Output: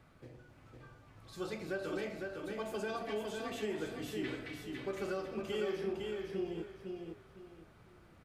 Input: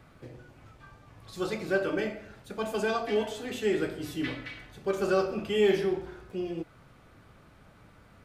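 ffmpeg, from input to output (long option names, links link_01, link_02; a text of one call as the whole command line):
ffmpeg -i in.wav -af "acompressor=threshold=-28dB:ratio=4,aecho=1:1:506|1012|1518|2024:0.631|0.183|0.0531|0.0154,volume=-7dB" out.wav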